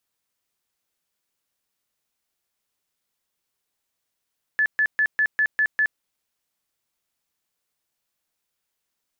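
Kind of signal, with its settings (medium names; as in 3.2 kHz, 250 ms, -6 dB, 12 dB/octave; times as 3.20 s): tone bursts 1.73 kHz, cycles 119, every 0.20 s, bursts 7, -16.5 dBFS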